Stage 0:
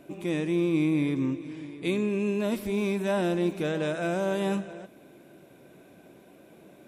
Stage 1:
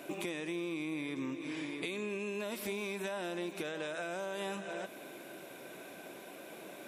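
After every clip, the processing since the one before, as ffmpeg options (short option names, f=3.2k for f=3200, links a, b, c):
-af "highpass=f=870:p=1,alimiter=level_in=6.5dB:limit=-24dB:level=0:latency=1:release=328,volume=-6.5dB,acompressor=threshold=-46dB:ratio=6,volume=10.5dB"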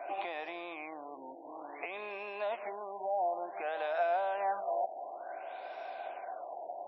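-filter_complex "[0:a]acrossover=split=3200[a][b];[b]acompressor=threshold=-57dB:ratio=4:attack=1:release=60[c];[a][c]amix=inputs=2:normalize=0,highpass=f=730:t=q:w=7,afftfilt=real='re*lt(b*sr/1024,950*pow(5700/950,0.5+0.5*sin(2*PI*0.56*pts/sr)))':imag='im*lt(b*sr/1024,950*pow(5700/950,0.5+0.5*sin(2*PI*0.56*pts/sr)))':win_size=1024:overlap=0.75"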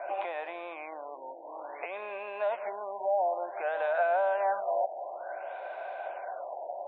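-af "highpass=210,equalizer=f=270:t=q:w=4:g=-9,equalizer=f=560:t=q:w=4:g=9,equalizer=f=930:t=q:w=4:g=5,equalizer=f=1.5k:t=q:w=4:g=7,lowpass=f=3.3k:w=0.5412,lowpass=f=3.3k:w=1.3066"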